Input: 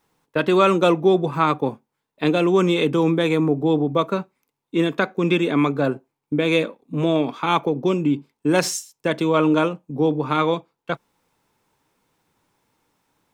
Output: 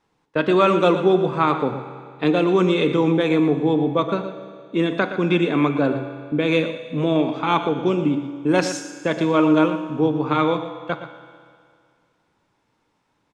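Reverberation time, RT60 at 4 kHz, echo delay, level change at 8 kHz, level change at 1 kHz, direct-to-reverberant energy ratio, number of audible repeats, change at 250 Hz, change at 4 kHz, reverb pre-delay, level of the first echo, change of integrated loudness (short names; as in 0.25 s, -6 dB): 2.1 s, 2.1 s, 0.117 s, -5.5 dB, +0.5 dB, 7.0 dB, 1, +1.0 dB, -1.0 dB, 6 ms, -12.0 dB, +0.5 dB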